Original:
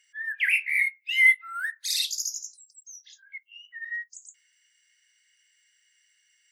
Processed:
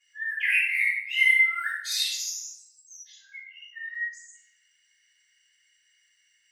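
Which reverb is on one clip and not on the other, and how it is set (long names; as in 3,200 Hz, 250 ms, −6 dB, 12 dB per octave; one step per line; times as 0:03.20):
rectangular room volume 270 cubic metres, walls mixed, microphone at 6.1 metres
level −14 dB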